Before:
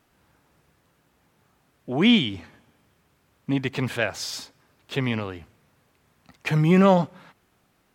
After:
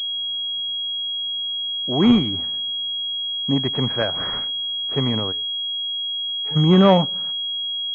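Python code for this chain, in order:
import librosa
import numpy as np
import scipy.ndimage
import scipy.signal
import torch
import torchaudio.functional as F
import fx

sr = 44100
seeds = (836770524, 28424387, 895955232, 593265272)

y = fx.comb_fb(x, sr, f0_hz=430.0, decay_s=0.17, harmonics='all', damping=0.0, mix_pct=90, at=(5.31, 6.55), fade=0.02)
y = fx.pwm(y, sr, carrier_hz=3300.0)
y = y * 10.0 ** (3.5 / 20.0)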